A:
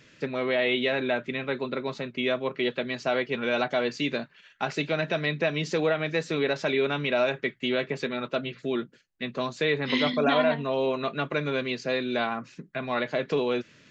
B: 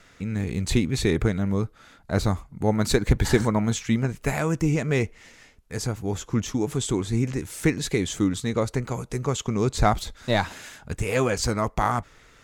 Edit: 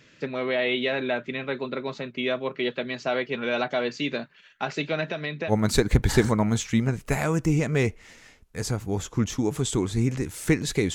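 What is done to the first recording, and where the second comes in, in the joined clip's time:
A
5.03–5.53 s: compression 5:1, threshold -27 dBFS
5.50 s: go over to B from 2.66 s, crossfade 0.06 s

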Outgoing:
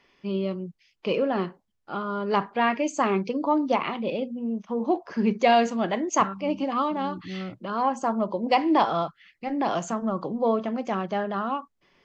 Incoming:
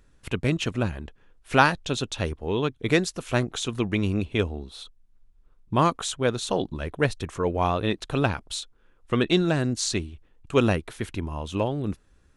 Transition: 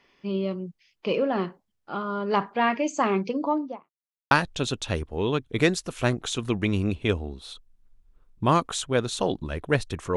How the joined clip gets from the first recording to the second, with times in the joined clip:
outgoing
3.37–3.90 s: studio fade out
3.90–4.31 s: mute
4.31 s: go over to incoming from 1.61 s

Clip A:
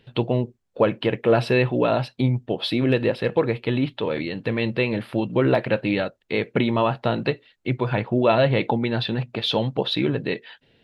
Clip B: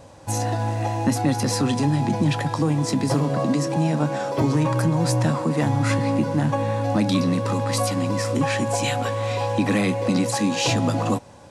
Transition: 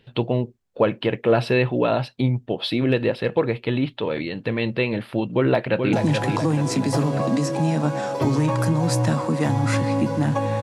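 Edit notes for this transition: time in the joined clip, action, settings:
clip A
5.24–5.93 s: echo throw 430 ms, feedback 50%, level -5.5 dB
5.93 s: go over to clip B from 2.10 s

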